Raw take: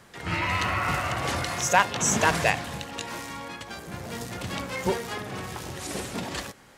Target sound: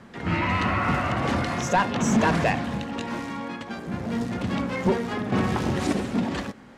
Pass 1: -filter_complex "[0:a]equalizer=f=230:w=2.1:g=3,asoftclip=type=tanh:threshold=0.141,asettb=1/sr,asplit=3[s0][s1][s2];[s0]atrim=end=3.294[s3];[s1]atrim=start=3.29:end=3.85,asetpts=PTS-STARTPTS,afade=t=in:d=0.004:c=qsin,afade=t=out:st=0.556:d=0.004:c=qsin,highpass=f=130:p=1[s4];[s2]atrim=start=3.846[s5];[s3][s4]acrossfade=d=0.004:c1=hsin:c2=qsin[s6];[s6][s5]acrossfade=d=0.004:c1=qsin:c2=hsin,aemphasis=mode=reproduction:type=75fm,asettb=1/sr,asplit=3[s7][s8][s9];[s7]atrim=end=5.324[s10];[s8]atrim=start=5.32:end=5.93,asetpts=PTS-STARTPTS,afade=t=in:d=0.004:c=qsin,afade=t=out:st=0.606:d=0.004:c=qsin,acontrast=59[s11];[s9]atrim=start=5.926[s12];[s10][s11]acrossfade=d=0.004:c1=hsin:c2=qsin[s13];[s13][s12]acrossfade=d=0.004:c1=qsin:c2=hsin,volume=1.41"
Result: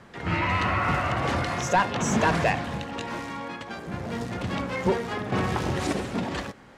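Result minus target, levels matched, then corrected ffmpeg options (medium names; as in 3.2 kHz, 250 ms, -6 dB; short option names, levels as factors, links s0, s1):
250 Hz band -3.0 dB
-filter_complex "[0:a]equalizer=f=230:w=2.1:g=10.5,asoftclip=type=tanh:threshold=0.141,asettb=1/sr,asplit=3[s0][s1][s2];[s0]atrim=end=3.294[s3];[s1]atrim=start=3.29:end=3.85,asetpts=PTS-STARTPTS,afade=t=in:d=0.004:c=qsin,afade=t=out:st=0.556:d=0.004:c=qsin,highpass=f=130:p=1[s4];[s2]atrim=start=3.846[s5];[s3][s4]acrossfade=d=0.004:c1=hsin:c2=qsin[s6];[s6][s5]acrossfade=d=0.004:c1=qsin:c2=hsin,aemphasis=mode=reproduction:type=75fm,asettb=1/sr,asplit=3[s7][s8][s9];[s7]atrim=end=5.324[s10];[s8]atrim=start=5.32:end=5.93,asetpts=PTS-STARTPTS,afade=t=in:d=0.004:c=qsin,afade=t=out:st=0.606:d=0.004:c=qsin,acontrast=59[s11];[s9]atrim=start=5.926[s12];[s10][s11]acrossfade=d=0.004:c1=hsin:c2=qsin[s13];[s13][s12]acrossfade=d=0.004:c1=qsin:c2=hsin,volume=1.41"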